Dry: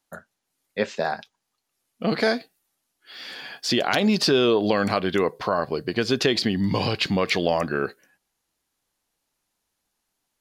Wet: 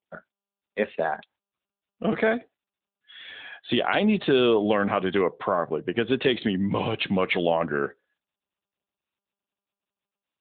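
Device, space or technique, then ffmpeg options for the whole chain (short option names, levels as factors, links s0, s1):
mobile call with aggressive noise cancelling: -af "highpass=f=140:p=1,afftdn=nr=22:nf=-43" -ar 8000 -c:a libopencore_amrnb -b:a 10200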